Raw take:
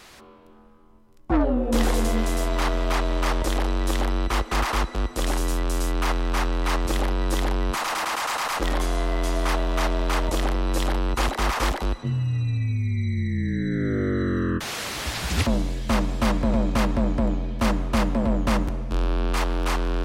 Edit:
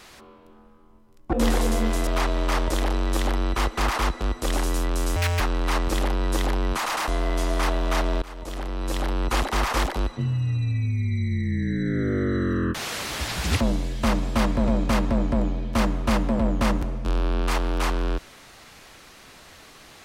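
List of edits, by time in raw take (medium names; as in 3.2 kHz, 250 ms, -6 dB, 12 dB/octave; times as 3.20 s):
1.33–1.66 s: delete
2.40–2.81 s: delete
5.90–6.38 s: speed 200%
8.06–8.94 s: delete
10.08–11.15 s: fade in, from -21 dB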